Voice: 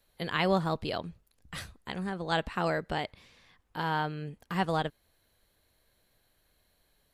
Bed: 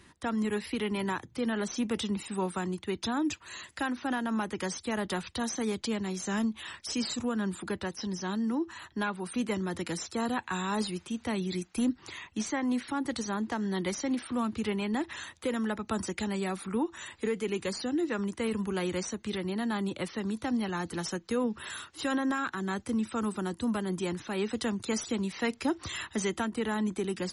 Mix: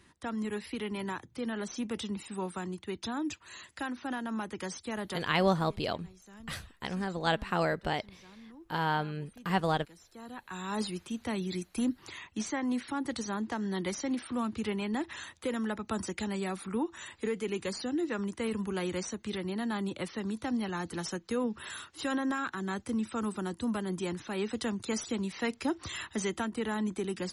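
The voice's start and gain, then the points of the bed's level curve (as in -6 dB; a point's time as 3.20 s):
4.95 s, +0.5 dB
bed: 5.11 s -4.5 dB
5.46 s -21.5 dB
10.00 s -21.5 dB
10.80 s -2 dB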